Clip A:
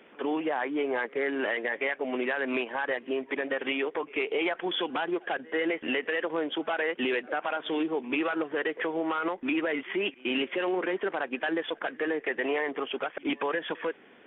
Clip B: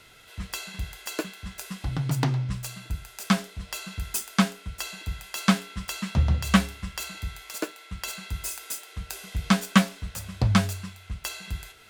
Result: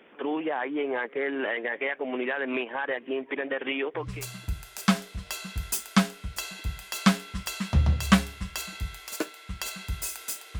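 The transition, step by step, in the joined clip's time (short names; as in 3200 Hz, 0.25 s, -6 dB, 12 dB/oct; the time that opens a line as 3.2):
clip A
4.11 switch to clip B from 2.53 s, crossfade 0.34 s linear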